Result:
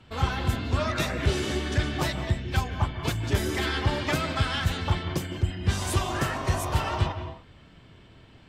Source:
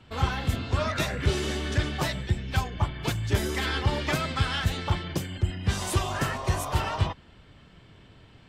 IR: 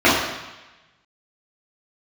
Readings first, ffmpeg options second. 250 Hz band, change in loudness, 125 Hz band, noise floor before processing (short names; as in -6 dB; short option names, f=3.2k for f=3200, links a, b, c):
+1.5 dB, +0.5 dB, +0.5 dB, -54 dBFS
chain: -filter_complex "[0:a]asplit=2[a][b];[1:a]atrim=start_sample=2205,afade=t=out:st=0.22:d=0.01,atrim=end_sample=10143,adelay=144[c];[b][c]afir=irnorm=-1:irlink=0,volume=-34.5dB[d];[a][d]amix=inputs=2:normalize=0"